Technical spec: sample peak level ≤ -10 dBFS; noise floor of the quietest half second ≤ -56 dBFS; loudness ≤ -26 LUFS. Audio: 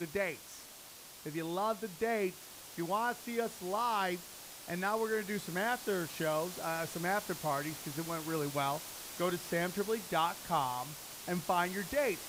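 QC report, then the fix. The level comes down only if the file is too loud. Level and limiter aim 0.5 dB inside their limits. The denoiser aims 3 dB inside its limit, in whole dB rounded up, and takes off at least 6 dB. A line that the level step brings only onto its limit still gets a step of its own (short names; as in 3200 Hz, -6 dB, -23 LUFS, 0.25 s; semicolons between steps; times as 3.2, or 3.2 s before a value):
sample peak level -19.0 dBFS: OK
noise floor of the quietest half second -52 dBFS: fail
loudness -35.5 LUFS: OK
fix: denoiser 7 dB, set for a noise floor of -52 dBFS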